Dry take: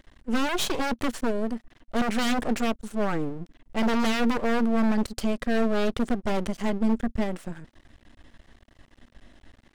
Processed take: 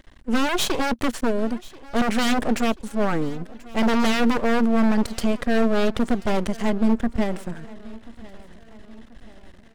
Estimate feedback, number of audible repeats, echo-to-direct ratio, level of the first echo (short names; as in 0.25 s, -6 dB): 50%, 3, -20.0 dB, -21.0 dB